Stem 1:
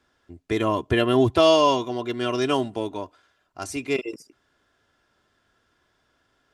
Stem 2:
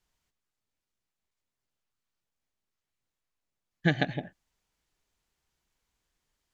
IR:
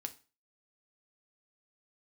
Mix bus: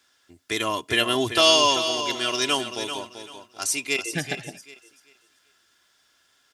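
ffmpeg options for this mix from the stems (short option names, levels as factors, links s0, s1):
-filter_complex "[0:a]tiltshelf=f=1300:g=-7,volume=0.891,asplit=3[s0][s1][s2];[s1]volume=0.126[s3];[s2]volume=0.376[s4];[1:a]adelay=300,volume=0.668[s5];[2:a]atrim=start_sample=2205[s6];[s3][s6]afir=irnorm=-1:irlink=0[s7];[s4]aecho=0:1:388|776|1164|1552:1|0.25|0.0625|0.0156[s8];[s0][s5][s7][s8]amix=inputs=4:normalize=0,highpass=f=120:p=1,highshelf=f=3700:g=7.5"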